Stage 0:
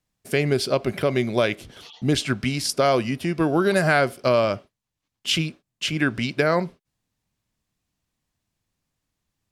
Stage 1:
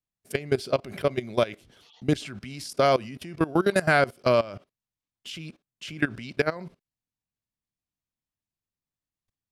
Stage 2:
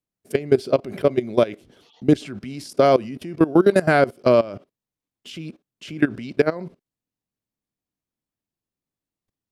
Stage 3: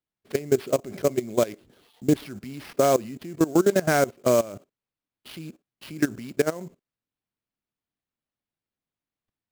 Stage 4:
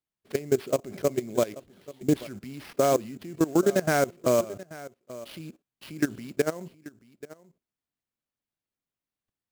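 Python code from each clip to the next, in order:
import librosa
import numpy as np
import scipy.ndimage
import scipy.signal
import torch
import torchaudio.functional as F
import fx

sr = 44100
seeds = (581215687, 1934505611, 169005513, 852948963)

y1 = fx.level_steps(x, sr, step_db=19)
y2 = fx.peak_eq(y1, sr, hz=330.0, db=10.0, octaves=2.3)
y2 = y2 * 10.0 ** (-1.0 / 20.0)
y3 = fx.sample_hold(y2, sr, seeds[0], rate_hz=7300.0, jitter_pct=20)
y3 = y3 * 10.0 ** (-4.5 / 20.0)
y4 = y3 + 10.0 ** (-18.0 / 20.0) * np.pad(y3, (int(834 * sr / 1000.0), 0))[:len(y3)]
y4 = y4 * 10.0 ** (-2.5 / 20.0)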